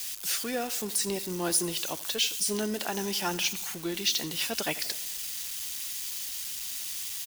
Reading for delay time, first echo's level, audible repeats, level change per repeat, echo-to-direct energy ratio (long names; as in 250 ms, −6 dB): 85 ms, −18.5 dB, 4, −4.5 dB, −16.5 dB